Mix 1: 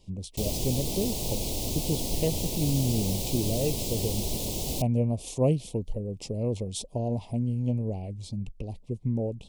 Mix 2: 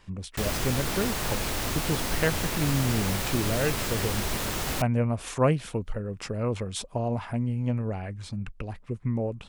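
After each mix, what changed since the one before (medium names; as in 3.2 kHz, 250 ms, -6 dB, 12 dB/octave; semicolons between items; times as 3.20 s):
master: remove Butterworth band-stop 1.5 kHz, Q 0.54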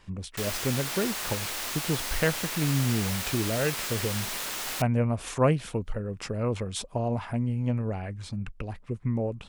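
background: add high-pass 1.3 kHz 6 dB/octave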